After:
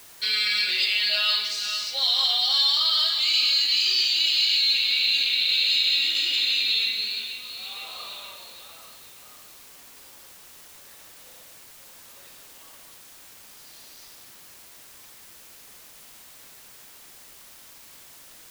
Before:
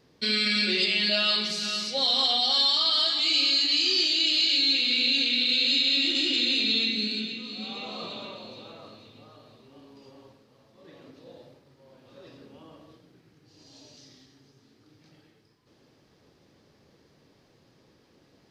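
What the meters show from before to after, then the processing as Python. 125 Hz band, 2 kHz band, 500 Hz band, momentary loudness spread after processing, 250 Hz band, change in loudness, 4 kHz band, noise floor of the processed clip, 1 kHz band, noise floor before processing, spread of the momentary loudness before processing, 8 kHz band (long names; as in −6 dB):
below −10 dB, +2.0 dB, −10.5 dB, 15 LU, below −20 dB, +2.0 dB, +2.0 dB, −48 dBFS, −2.5 dB, −63 dBFS, 15 LU, +3.5 dB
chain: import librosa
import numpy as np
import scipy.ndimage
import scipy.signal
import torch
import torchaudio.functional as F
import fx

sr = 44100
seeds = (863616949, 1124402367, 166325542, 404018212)

p1 = scipy.signal.sosfilt(scipy.signal.butter(2, 1100.0, 'highpass', fs=sr, output='sos'), x)
p2 = fx.quant_dither(p1, sr, seeds[0], bits=6, dither='triangular')
y = p1 + (p2 * 10.0 ** (-12.0 / 20.0))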